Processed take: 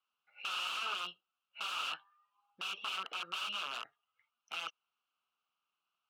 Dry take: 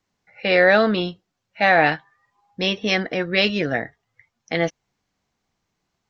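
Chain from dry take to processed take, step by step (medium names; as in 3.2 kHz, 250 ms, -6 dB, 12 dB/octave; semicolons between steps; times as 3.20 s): integer overflow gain 19 dB; peak limiter -22.5 dBFS, peak gain reduction 3.5 dB; two resonant band-passes 1.9 kHz, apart 1.1 oct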